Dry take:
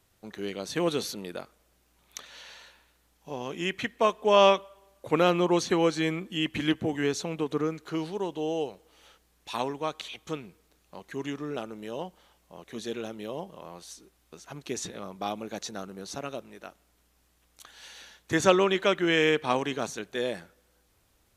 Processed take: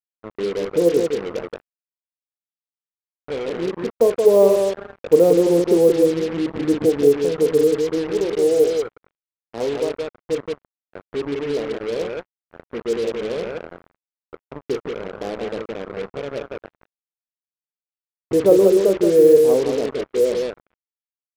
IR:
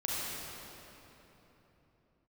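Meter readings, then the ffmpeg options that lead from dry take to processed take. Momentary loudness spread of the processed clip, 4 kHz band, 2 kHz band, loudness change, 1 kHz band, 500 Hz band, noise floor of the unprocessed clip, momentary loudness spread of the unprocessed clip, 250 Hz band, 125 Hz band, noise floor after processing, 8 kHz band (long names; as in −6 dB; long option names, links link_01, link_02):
17 LU, −2.5 dB, −3.5 dB, +9.5 dB, −3.5 dB, +12.5 dB, −68 dBFS, 21 LU, +8.0 dB, +4.0 dB, below −85 dBFS, +3.0 dB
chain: -filter_complex "[0:a]asplit=2[link_01][link_02];[1:a]atrim=start_sample=2205,afade=type=out:start_time=0.39:duration=0.01,atrim=end_sample=17640,asetrate=26019,aresample=44100[link_03];[link_02][link_03]afir=irnorm=-1:irlink=0,volume=-28dB[link_04];[link_01][link_04]amix=inputs=2:normalize=0,aeval=exprs='val(0)+0.00224*(sin(2*PI*60*n/s)+sin(2*PI*2*60*n/s)/2+sin(2*PI*3*60*n/s)/3+sin(2*PI*4*60*n/s)/4+sin(2*PI*5*60*n/s)/5)':channel_layout=same,lowpass=frequency=470:width_type=q:width=4.9,aecho=1:1:34.99|174.9:0.316|0.562,acrusher=bits=4:mix=0:aa=0.5,volume=1dB"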